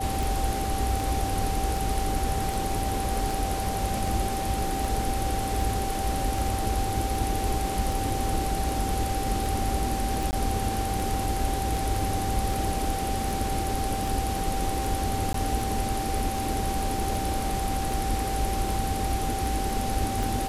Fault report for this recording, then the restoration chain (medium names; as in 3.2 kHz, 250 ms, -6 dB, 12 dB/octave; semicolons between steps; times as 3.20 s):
tick 78 rpm
whine 780 Hz -30 dBFS
10.31–10.33 s: dropout 19 ms
15.33–15.34 s: dropout 13 ms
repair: de-click; band-stop 780 Hz, Q 30; interpolate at 10.31 s, 19 ms; interpolate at 15.33 s, 13 ms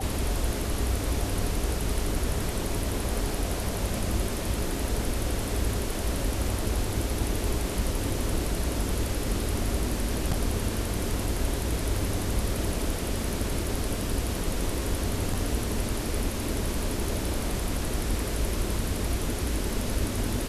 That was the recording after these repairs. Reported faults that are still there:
nothing left